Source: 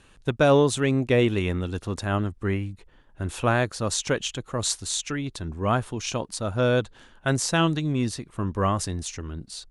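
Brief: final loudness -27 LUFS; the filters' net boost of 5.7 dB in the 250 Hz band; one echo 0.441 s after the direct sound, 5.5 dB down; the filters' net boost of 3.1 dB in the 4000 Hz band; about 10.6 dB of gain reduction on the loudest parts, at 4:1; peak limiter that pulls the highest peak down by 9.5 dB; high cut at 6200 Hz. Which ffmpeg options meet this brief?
-af "lowpass=6.2k,equalizer=f=250:t=o:g=7,equalizer=f=4k:t=o:g=4.5,acompressor=threshold=-25dB:ratio=4,alimiter=limit=-22.5dB:level=0:latency=1,aecho=1:1:441:0.531,volume=4.5dB"

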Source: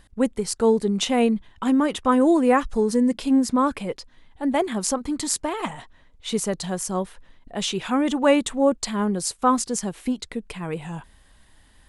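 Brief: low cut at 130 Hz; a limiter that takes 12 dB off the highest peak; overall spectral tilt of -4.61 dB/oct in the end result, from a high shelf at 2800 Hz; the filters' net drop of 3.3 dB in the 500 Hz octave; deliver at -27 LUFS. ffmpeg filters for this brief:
-af "highpass=130,equalizer=f=500:t=o:g=-3.5,highshelf=f=2.8k:g=-7,volume=3dB,alimiter=limit=-17.5dB:level=0:latency=1"

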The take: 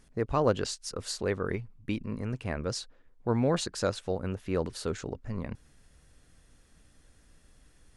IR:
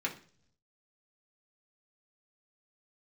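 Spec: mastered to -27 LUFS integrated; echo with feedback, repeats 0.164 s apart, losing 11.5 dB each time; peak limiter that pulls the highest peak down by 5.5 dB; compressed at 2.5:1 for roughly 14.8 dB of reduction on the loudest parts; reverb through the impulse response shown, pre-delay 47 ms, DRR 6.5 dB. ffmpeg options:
-filter_complex "[0:a]acompressor=threshold=-43dB:ratio=2.5,alimiter=level_in=8.5dB:limit=-24dB:level=0:latency=1,volume=-8.5dB,aecho=1:1:164|328|492:0.266|0.0718|0.0194,asplit=2[a][b];[1:a]atrim=start_sample=2205,adelay=47[c];[b][c]afir=irnorm=-1:irlink=0,volume=-11dB[d];[a][d]amix=inputs=2:normalize=0,volume=17.5dB"

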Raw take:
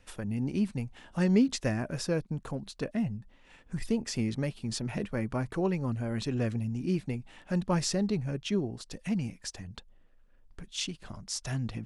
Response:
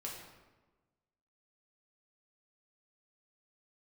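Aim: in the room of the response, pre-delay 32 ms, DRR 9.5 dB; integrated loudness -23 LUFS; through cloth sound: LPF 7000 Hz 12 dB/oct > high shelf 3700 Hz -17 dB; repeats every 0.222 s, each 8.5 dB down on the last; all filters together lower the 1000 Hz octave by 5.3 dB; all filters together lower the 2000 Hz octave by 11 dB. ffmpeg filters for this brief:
-filter_complex "[0:a]equalizer=f=1k:t=o:g=-4,equalizer=f=2k:t=o:g=-8,aecho=1:1:222|444|666|888:0.376|0.143|0.0543|0.0206,asplit=2[a][b];[1:a]atrim=start_sample=2205,adelay=32[c];[b][c]afir=irnorm=-1:irlink=0,volume=-8.5dB[d];[a][d]amix=inputs=2:normalize=0,lowpass=7k,highshelf=f=3.7k:g=-17,volume=9dB"

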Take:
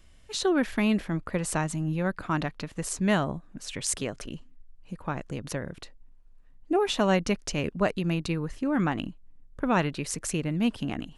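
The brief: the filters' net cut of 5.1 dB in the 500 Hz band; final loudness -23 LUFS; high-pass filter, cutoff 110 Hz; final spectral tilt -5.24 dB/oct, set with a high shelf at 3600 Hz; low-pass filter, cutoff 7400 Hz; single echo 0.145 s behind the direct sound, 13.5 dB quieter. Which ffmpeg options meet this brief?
-af "highpass=110,lowpass=7.4k,equalizer=f=500:t=o:g=-7,highshelf=f=3.6k:g=-3,aecho=1:1:145:0.211,volume=8dB"

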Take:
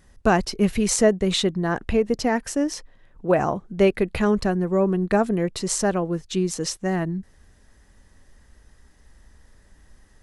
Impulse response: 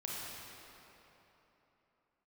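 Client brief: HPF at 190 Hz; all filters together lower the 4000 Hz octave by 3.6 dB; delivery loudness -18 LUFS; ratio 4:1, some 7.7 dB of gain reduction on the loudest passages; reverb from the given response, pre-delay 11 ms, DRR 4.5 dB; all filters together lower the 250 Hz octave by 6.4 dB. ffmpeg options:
-filter_complex "[0:a]highpass=190,equalizer=f=250:t=o:g=-6.5,equalizer=f=4k:t=o:g=-4.5,acompressor=threshold=-24dB:ratio=4,asplit=2[a][b];[1:a]atrim=start_sample=2205,adelay=11[c];[b][c]afir=irnorm=-1:irlink=0,volume=-6.5dB[d];[a][d]amix=inputs=2:normalize=0,volume=10.5dB"

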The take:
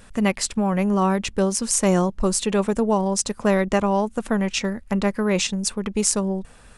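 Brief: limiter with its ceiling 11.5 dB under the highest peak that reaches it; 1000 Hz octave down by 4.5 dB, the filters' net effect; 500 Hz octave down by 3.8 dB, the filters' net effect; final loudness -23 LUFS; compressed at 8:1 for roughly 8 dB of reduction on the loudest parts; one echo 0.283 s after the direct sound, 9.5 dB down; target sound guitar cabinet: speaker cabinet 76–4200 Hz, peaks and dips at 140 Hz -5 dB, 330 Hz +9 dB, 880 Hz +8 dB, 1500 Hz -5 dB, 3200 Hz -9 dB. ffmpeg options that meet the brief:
-af "equalizer=f=500:t=o:g=-6.5,equalizer=f=1k:t=o:g=-8.5,acompressor=threshold=-25dB:ratio=8,alimiter=limit=-20.5dB:level=0:latency=1,highpass=76,equalizer=f=140:t=q:w=4:g=-5,equalizer=f=330:t=q:w=4:g=9,equalizer=f=880:t=q:w=4:g=8,equalizer=f=1.5k:t=q:w=4:g=-5,equalizer=f=3.2k:t=q:w=4:g=-9,lowpass=f=4.2k:w=0.5412,lowpass=f=4.2k:w=1.3066,aecho=1:1:283:0.335,volume=8dB"

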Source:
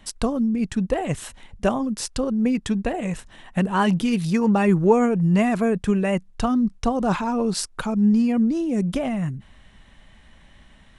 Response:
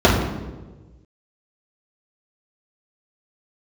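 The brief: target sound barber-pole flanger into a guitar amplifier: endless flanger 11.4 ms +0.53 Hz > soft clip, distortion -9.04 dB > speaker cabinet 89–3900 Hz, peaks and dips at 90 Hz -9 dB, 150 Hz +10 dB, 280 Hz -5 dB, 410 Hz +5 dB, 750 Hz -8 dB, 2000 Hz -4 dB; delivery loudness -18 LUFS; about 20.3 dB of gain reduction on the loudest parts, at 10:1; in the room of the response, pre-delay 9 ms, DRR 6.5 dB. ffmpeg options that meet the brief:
-filter_complex "[0:a]acompressor=threshold=-32dB:ratio=10,asplit=2[a][b];[1:a]atrim=start_sample=2205,adelay=9[c];[b][c]afir=irnorm=-1:irlink=0,volume=-32.5dB[d];[a][d]amix=inputs=2:normalize=0,asplit=2[e][f];[f]adelay=11.4,afreqshift=0.53[g];[e][g]amix=inputs=2:normalize=1,asoftclip=threshold=-33dB,highpass=89,equalizer=f=90:t=q:w=4:g=-9,equalizer=f=150:t=q:w=4:g=10,equalizer=f=280:t=q:w=4:g=-5,equalizer=f=410:t=q:w=4:g=5,equalizer=f=750:t=q:w=4:g=-8,equalizer=f=2k:t=q:w=4:g=-4,lowpass=f=3.9k:w=0.5412,lowpass=f=3.9k:w=1.3066,volume=20dB"

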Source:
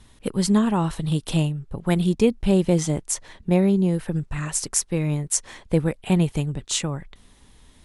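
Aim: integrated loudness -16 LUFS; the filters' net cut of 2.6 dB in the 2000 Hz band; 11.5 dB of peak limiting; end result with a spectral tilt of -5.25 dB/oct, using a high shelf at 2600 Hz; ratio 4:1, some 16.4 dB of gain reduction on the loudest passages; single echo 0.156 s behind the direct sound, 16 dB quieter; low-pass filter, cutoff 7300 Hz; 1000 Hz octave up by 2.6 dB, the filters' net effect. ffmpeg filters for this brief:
-af "lowpass=7.3k,equalizer=f=1k:t=o:g=4,equalizer=f=2k:t=o:g=-6,highshelf=f=2.6k:g=3,acompressor=threshold=-33dB:ratio=4,alimiter=level_in=3dB:limit=-24dB:level=0:latency=1,volume=-3dB,aecho=1:1:156:0.158,volume=22dB"

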